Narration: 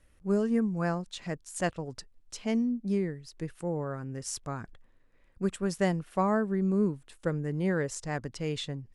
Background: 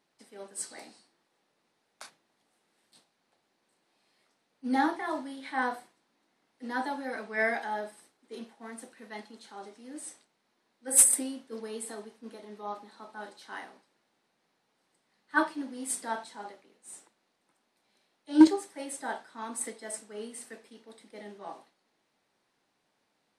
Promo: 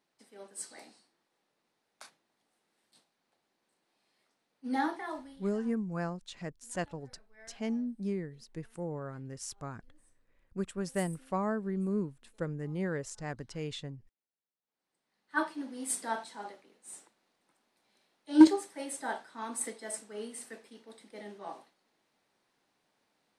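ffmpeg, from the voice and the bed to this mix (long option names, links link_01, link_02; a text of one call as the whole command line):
ffmpeg -i stem1.wav -i stem2.wav -filter_complex "[0:a]adelay=5150,volume=-5.5dB[link_01];[1:a]volume=23dB,afade=type=out:start_time=5:duration=0.58:silence=0.0668344,afade=type=in:start_time=14.61:duration=1.31:silence=0.0421697[link_02];[link_01][link_02]amix=inputs=2:normalize=0" out.wav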